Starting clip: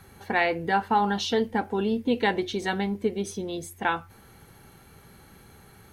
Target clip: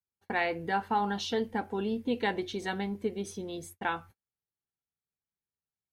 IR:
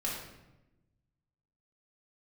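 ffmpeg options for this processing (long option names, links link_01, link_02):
-af "agate=range=-45dB:threshold=-42dB:ratio=16:detection=peak,volume=-6dB"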